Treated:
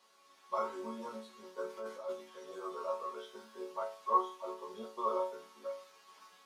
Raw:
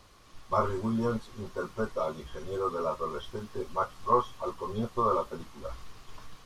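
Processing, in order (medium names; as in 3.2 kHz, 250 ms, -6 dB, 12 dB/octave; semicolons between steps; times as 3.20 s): 1.69–2.13 s: compressor with a negative ratio -35 dBFS, ratio -1; high-pass 450 Hz 12 dB/octave; chord resonator F#3 minor, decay 0.41 s; trim +11.5 dB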